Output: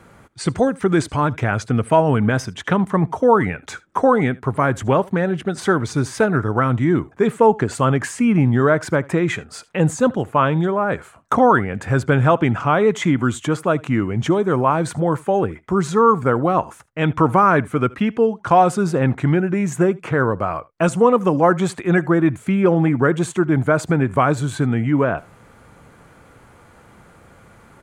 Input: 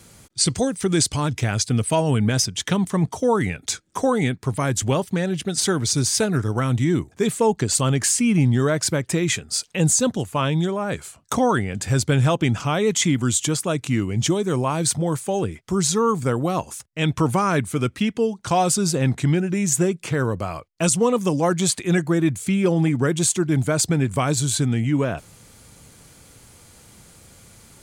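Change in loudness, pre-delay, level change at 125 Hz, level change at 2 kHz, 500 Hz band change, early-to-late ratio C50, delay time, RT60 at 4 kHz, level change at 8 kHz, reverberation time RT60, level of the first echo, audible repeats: +3.0 dB, no reverb, +1.0 dB, +5.0 dB, +5.5 dB, no reverb, 76 ms, no reverb, -13.0 dB, no reverb, -23.5 dB, 1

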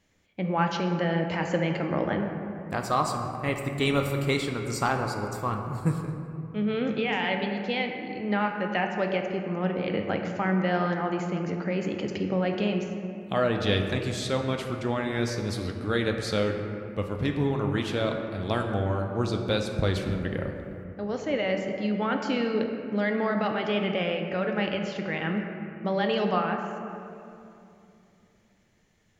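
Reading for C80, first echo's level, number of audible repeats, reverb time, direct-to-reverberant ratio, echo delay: 5.5 dB, no echo, no echo, 2.8 s, 3.0 dB, no echo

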